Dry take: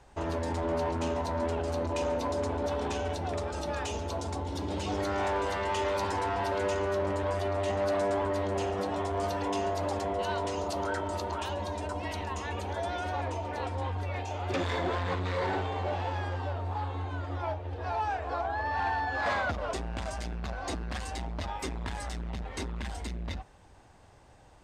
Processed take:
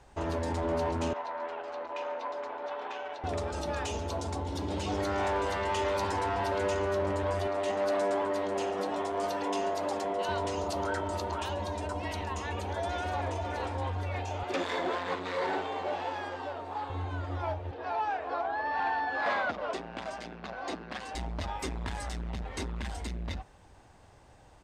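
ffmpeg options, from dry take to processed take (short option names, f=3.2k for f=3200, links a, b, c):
-filter_complex "[0:a]asettb=1/sr,asplit=3[a][b][c];[a]atrim=end=1.134[d];[b]atrim=start=1.13:end=3.24,asetpts=PTS-STARTPTS,afade=t=in:d=0.004:c=qsin,afade=t=out:st=2.106:d=0.004:c=qsin,highpass=740,lowpass=2.6k[e];[c]atrim=start=3.236[f];[d][e]acrossfade=d=0.004:c1=hsin:c2=qsin[g];[g][f]acrossfade=d=0.004:c1=qsin:c2=hsin,asettb=1/sr,asplit=3[h][i][j];[h]atrim=end=7.474[k];[i]atrim=start=7.47:end=10.29,asetpts=PTS-STARTPTS,afade=t=in:d=0.004:c=qsin,afade=t=out:st=2.816:d=0.004:c=qsin,highpass=220[l];[j]atrim=start=10.286[m];[k][l]acrossfade=d=0.004:c1=hsin:c2=qsin[n];[n][m]acrossfade=d=0.004:c1=qsin:c2=hsin,asplit=2[o][p];[p]afade=t=in:st=12.37:d=0.01,afade=t=out:st=13.25:d=0.01,aecho=0:1:520|1040|1560|2080:0.354813|0.141925|0.0567701|0.0227081[q];[o][q]amix=inputs=2:normalize=0,asettb=1/sr,asplit=3[r][s][t];[r]atrim=end=14.434[u];[s]atrim=start=14.43:end=16.9,asetpts=PTS-STARTPTS,afade=t=in:d=0.004:c=qsin,afade=t=out:st=2.466:d=0.004:c=qsin,highpass=250[v];[t]atrim=start=16.896[w];[u][v]acrossfade=d=0.004:c1=hsin:c2=qsin[x];[x][w]acrossfade=d=0.004:c1=qsin:c2=hsin,asettb=1/sr,asplit=3[y][z][aa];[y]atrim=end=17.714[ab];[z]atrim=start=17.71:end=21.15,asetpts=PTS-STARTPTS,afade=t=in:d=0.004:c=qsin,afade=t=out:st=3.436:d=0.004:c=qsin,acrossover=split=180 5000:gain=0.0891 1 0.251[ac][ad][ae];[ac][ad][ae]amix=inputs=3:normalize=0[af];[aa]atrim=start=21.146[ag];[ab][af]acrossfade=d=0.004:c1=hsin:c2=qsin[ah];[ah][ag]acrossfade=d=0.004:c1=qsin:c2=hsin"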